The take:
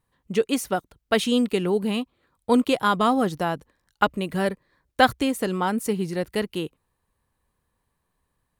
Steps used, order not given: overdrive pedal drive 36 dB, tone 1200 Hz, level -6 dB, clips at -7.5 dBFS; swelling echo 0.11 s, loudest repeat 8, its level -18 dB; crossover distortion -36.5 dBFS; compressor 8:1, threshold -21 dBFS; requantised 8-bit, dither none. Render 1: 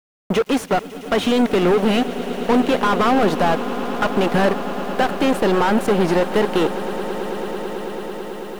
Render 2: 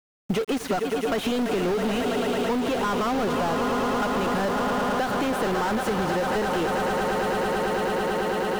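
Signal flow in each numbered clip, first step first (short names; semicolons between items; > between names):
compressor > crossover distortion > overdrive pedal > swelling echo > requantised; swelling echo > overdrive pedal > compressor > crossover distortion > requantised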